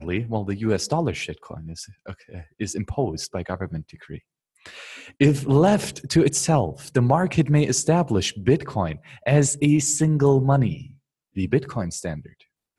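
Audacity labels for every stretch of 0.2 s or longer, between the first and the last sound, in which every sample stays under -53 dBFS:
4.200000	4.560000	silence
10.980000	11.350000	silence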